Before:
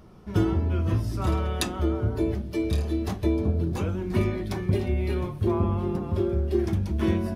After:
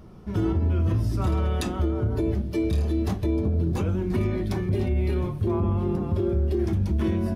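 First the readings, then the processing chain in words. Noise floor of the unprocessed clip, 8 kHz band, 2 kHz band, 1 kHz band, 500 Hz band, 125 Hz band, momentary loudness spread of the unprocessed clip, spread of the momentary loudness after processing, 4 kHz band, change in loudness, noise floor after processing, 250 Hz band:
-38 dBFS, -4.0 dB, -2.0 dB, -1.0 dB, 0.0 dB, +2.0 dB, 3 LU, 2 LU, -3.5 dB, +1.0 dB, -33 dBFS, +0.5 dB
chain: low shelf 430 Hz +5 dB; limiter -16.5 dBFS, peak gain reduction 8.5 dB

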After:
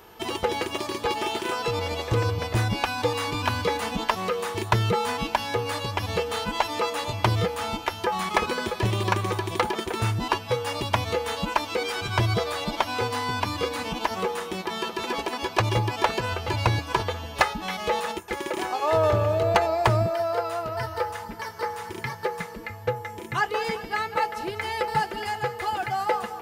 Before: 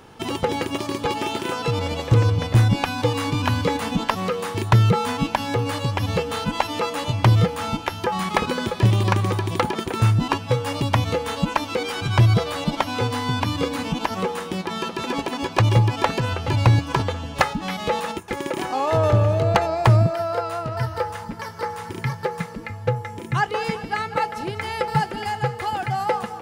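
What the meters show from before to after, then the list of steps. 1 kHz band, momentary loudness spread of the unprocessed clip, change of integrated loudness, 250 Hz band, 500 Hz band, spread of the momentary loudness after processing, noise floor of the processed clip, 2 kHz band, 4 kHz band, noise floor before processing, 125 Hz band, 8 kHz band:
-2.0 dB, 10 LU, -4.0 dB, -7.0 dB, -2.0 dB, 7 LU, -39 dBFS, -1.0 dB, -1.5 dB, -35 dBFS, -9.0 dB, -1.5 dB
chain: bell 140 Hz -13 dB 1.1 oct; whine 13000 Hz -52 dBFS; notch comb 270 Hz

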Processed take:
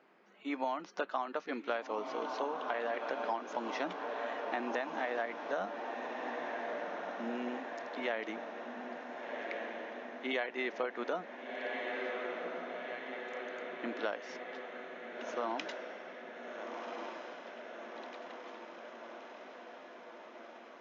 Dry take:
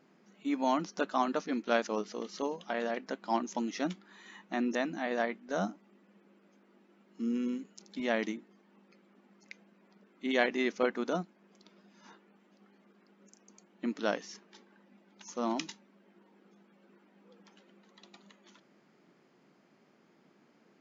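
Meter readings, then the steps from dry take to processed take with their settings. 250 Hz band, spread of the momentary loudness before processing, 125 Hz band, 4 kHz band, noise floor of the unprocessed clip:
-8.0 dB, 17 LU, under -10 dB, -3.0 dB, -66 dBFS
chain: three-band isolator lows -18 dB, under 380 Hz, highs -18 dB, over 3600 Hz; on a send: diffused feedback echo 1.458 s, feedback 69%, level -9 dB; on the sum: compressor 12:1, threshold -35 dBFS, peak gain reduction 13 dB; gain +4 dB

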